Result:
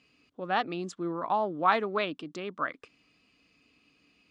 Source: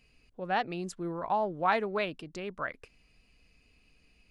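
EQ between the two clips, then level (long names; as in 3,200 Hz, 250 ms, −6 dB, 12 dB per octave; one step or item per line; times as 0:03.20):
loudspeaker in its box 140–8,100 Hz, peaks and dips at 290 Hz +9 dB, 1,200 Hz +8 dB, 3,400 Hz +6 dB
0.0 dB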